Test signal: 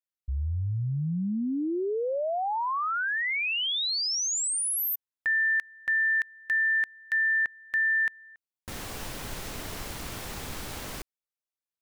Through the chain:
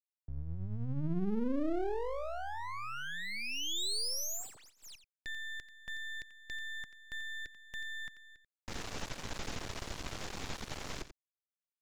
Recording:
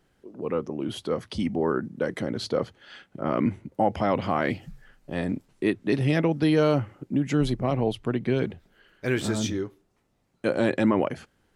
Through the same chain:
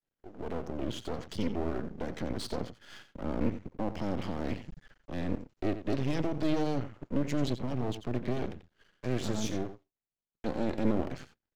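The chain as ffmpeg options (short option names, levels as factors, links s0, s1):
-filter_complex "[0:a]agate=range=0.0224:threshold=0.00158:ratio=3:release=61:detection=peak,acrossover=split=160|380|4000[s0][s1][s2][s3];[s0]alimiter=level_in=2.99:limit=0.0631:level=0:latency=1,volume=0.335[s4];[s2]acompressor=threshold=0.0178:ratio=20:attack=0.18:release=30:knee=1:detection=rms[s5];[s3]asoftclip=type=hard:threshold=0.0188[s6];[s4][s1][s5][s6]amix=inputs=4:normalize=0,aresample=16000,aresample=44100,aecho=1:1:88:0.251,aeval=exprs='max(val(0),0)':c=same"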